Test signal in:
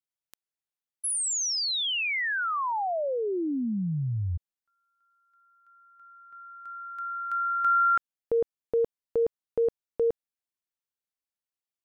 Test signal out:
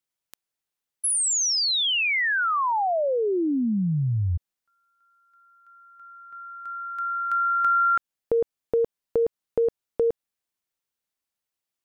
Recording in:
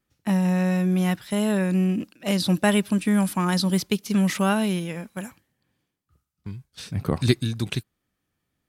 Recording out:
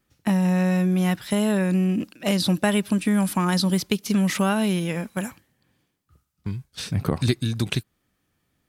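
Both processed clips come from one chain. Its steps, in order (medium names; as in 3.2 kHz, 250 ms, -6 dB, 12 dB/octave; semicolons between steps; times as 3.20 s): compression 2.5:1, threshold -27 dBFS; trim +6 dB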